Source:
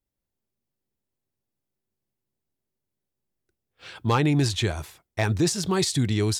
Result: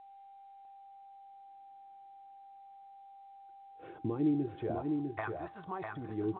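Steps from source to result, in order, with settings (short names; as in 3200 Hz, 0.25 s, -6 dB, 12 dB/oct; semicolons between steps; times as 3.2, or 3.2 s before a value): low shelf 110 Hz +11.5 dB; notch 410 Hz, Q 12; in parallel at +2 dB: compressor, threshold -34 dBFS, peak gain reduction 18 dB; on the sum: limiter -16 dBFS, peak gain reduction 8.5 dB; transient shaper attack +3 dB, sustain -8 dB; vocal rider 0.5 s; wah 0.42 Hz 320–1200 Hz, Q 3.1; whine 790 Hz -51 dBFS; air absorption 300 m; echo 0.651 s -4.5 dB; on a send at -10 dB: reverb, pre-delay 3 ms; on the sum: µ-law 64 kbps 8000 Hz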